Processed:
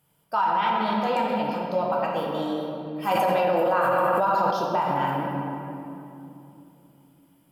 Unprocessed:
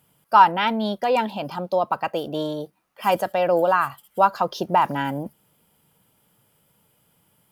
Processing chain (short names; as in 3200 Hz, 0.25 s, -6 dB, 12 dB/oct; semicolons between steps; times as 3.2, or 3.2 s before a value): shoebox room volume 120 m³, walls hard, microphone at 0.56 m; limiter -8.5 dBFS, peak gain reduction 9.5 dB; 3.11–4.51 fast leveller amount 100%; gain -6.5 dB